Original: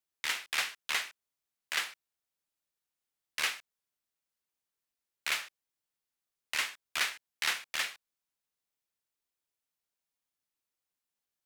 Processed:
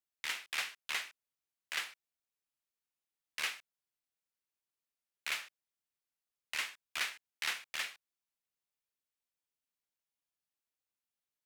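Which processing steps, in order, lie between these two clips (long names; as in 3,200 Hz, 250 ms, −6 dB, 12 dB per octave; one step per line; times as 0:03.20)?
parametric band 2,500 Hz +2 dB
level −6 dB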